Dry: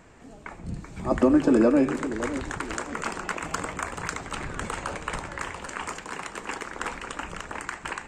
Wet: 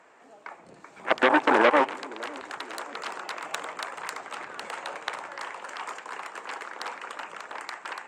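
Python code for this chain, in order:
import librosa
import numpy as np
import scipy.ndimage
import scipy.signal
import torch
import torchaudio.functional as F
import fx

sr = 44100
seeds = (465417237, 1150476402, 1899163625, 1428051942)

y = fx.high_shelf(x, sr, hz=2600.0, db=-11.5)
y = fx.cheby_harmonics(y, sr, harmonics=(7,), levels_db=(-12,), full_scale_db=-9.0)
y = scipy.signal.sosfilt(scipy.signal.butter(2, 630.0, 'highpass', fs=sr, output='sos'), y)
y = y * 10.0 ** (5.5 / 20.0)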